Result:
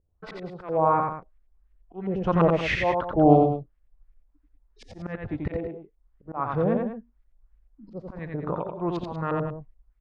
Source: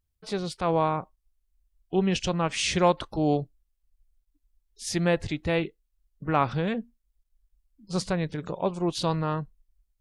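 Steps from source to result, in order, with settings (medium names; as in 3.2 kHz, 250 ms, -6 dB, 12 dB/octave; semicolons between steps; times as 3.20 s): LFO low-pass saw up 2.9 Hz 450–2200 Hz; slow attack 603 ms; loudspeakers at several distances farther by 30 m -3 dB, 66 m -11 dB; trim +6 dB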